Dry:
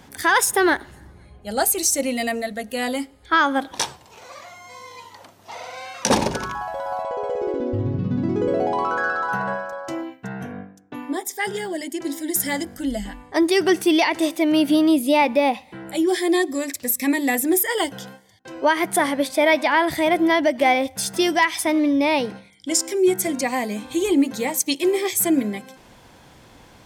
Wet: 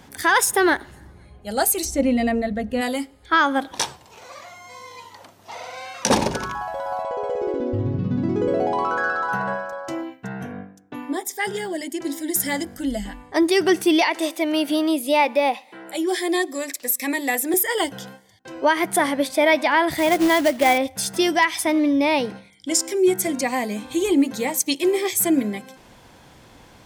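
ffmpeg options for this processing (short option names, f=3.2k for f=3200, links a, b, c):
-filter_complex "[0:a]asplit=3[a][b][c];[a]afade=t=out:st=1.84:d=0.02[d];[b]aemphasis=mode=reproduction:type=riaa,afade=t=in:st=1.84:d=0.02,afade=t=out:st=2.8:d=0.02[e];[c]afade=t=in:st=2.8:d=0.02[f];[d][e][f]amix=inputs=3:normalize=0,asettb=1/sr,asplit=3[g][h][i];[g]atrim=end=14.014[j];[h]atrim=start=14.01:end=17.54,asetpts=PTS-STARTPTS,afade=t=in:d=0.004:c=qsin,afade=t=out:st=3.526:d=0.004:c=qsin,highpass=370[k];[i]atrim=start=17.536[l];[j][k]acrossfade=d=0.004:c1=hsin:c2=qsin[m];[m][l]acrossfade=d=0.004:c1=qsin:c2=hsin,asettb=1/sr,asplit=3[n][o][p];[n]atrim=end=19.964[q];[o]atrim=start=19.96:end=20.78,asetpts=PTS-STARTPTS,afade=t=in:d=0.004:c=qsin,afade=t=out:st=0.816:d=0.004:c=qsin,acrusher=bits=3:mode=log:mix=0:aa=0.000001[r];[p]atrim=start=20.776[s];[q][r]acrossfade=d=0.004:c1=hsin:c2=qsin[t];[t][s]acrossfade=d=0.004:c1=qsin:c2=hsin"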